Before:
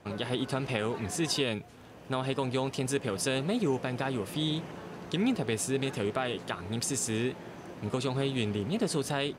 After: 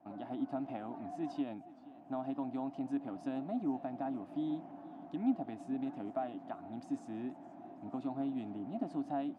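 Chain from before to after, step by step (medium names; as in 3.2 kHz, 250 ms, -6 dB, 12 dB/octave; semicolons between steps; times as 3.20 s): two resonant band-passes 450 Hz, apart 1.3 oct; modulated delay 470 ms, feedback 50%, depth 116 cents, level -19.5 dB; trim +1.5 dB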